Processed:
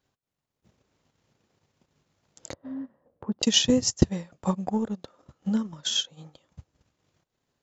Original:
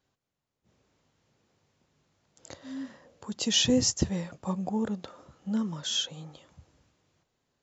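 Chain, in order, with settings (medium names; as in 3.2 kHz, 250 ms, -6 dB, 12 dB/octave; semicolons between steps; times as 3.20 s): 2.53–3.43 s: low-pass 1 kHz 12 dB/octave; transient shaper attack +8 dB, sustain -11 dB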